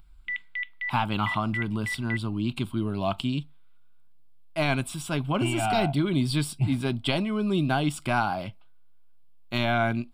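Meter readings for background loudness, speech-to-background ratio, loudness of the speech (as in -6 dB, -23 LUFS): -33.5 LUFS, 6.0 dB, -27.5 LUFS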